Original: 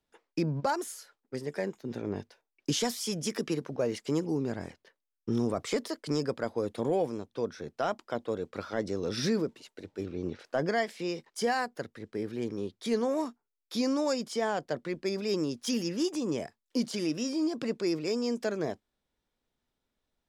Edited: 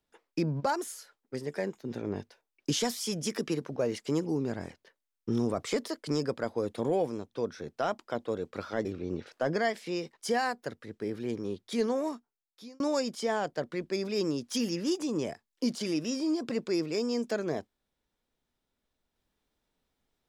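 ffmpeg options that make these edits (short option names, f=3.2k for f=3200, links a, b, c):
-filter_complex "[0:a]asplit=3[a][b][c];[a]atrim=end=8.852[d];[b]atrim=start=9.978:end=13.93,asetpts=PTS-STARTPTS,afade=t=out:st=3.022:d=0.93[e];[c]atrim=start=13.93,asetpts=PTS-STARTPTS,afade=t=in:d=0.004:c=hsin[f];[e][f]concat=n=2:v=0:a=1[g];[d][g]acrossfade=d=0.004:c1=hsin:c2=hsin"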